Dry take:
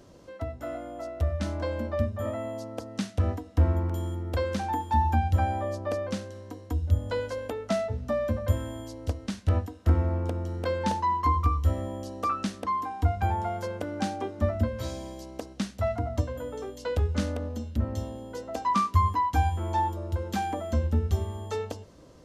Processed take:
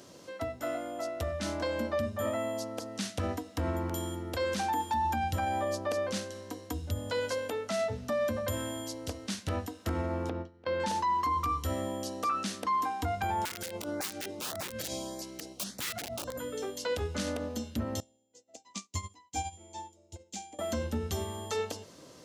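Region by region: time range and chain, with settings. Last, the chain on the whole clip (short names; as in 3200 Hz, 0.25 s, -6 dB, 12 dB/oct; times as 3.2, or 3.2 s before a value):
10.29–10.8 air absorption 230 m + gate with hold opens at -20 dBFS, closes at -28 dBFS
13.45–16.63 wrapped overs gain 25.5 dB + LFO notch saw up 1.7 Hz 570–3300 Hz
18–20.59 synth low-pass 7100 Hz, resonance Q 3.9 + band shelf 1300 Hz -13.5 dB 1 oct + upward expander 2.5:1, over -44 dBFS
whole clip: HPF 140 Hz 12 dB/oct; high shelf 2000 Hz +9.5 dB; limiter -23 dBFS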